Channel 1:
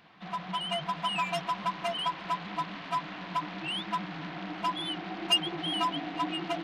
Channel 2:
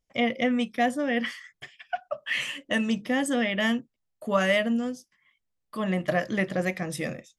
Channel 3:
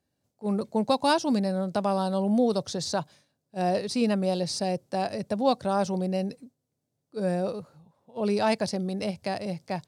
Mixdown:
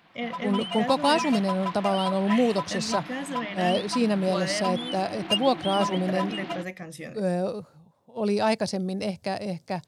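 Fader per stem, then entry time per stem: -0.5, -7.5, +1.0 dB; 0.00, 0.00, 0.00 s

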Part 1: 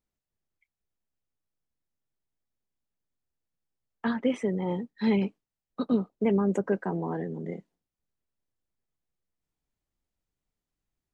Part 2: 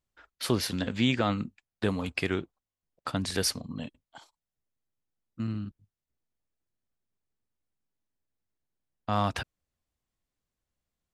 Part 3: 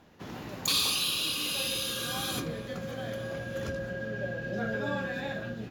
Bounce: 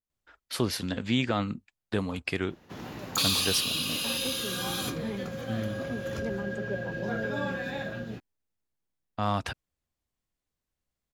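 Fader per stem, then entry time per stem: -11.5, -1.0, +0.5 dB; 0.00, 0.10, 2.50 s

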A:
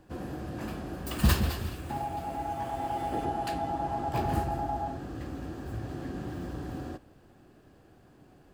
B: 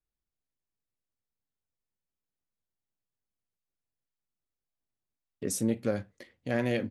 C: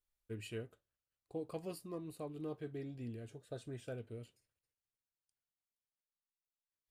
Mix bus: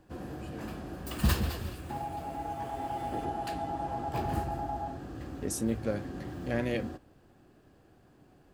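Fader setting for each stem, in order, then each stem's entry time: -3.0, -2.5, -7.5 dB; 0.00, 0.00, 0.00 s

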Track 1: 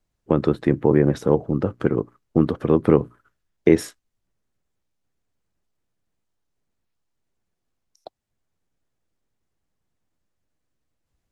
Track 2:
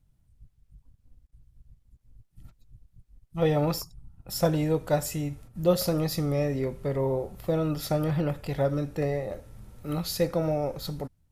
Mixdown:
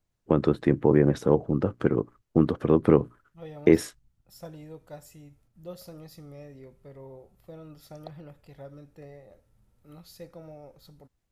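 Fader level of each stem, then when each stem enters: -3.0, -18.5 dB; 0.00, 0.00 s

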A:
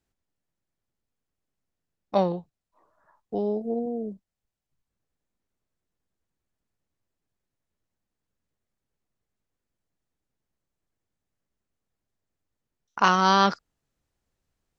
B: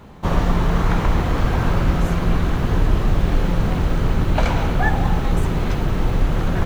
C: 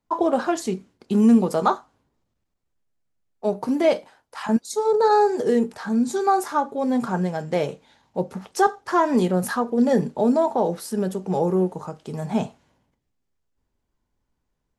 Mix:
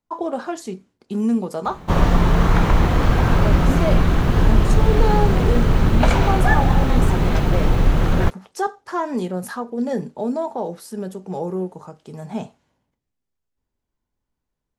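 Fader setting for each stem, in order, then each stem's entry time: off, +2.5 dB, -4.5 dB; off, 1.65 s, 0.00 s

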